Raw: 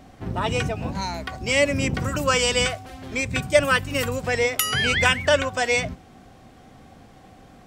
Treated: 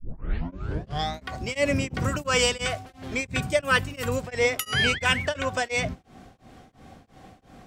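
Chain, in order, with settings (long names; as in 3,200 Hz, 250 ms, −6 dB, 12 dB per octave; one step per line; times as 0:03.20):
turntable start at the beginning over 1.24 s
high-shelf EQ 11,000 Hz −3 dB
in parallel at −4.5 dB: soft clipping −14 dBFS, distortion −14 dB
on the sum: tremolo along a rectified sine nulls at 2.9 Hz
level −3 dB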